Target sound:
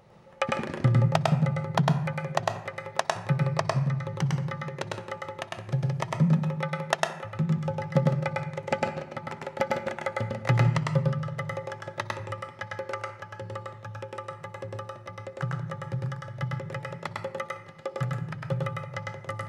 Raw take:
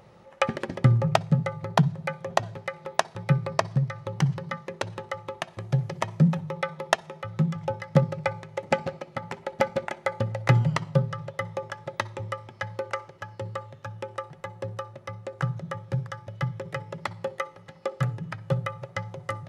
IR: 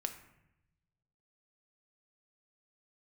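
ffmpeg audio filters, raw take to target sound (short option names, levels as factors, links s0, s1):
-filter_complex "[0:a]asplit=2[s0][s1];[1:a]atrim=start_sample=2205,adelay=103[s2];[s1][s2]afir=irnorm=-1:irlink=0,volume=1[s3];[s0][s3]amix=inputs=2:normalize=0,volume=0.631"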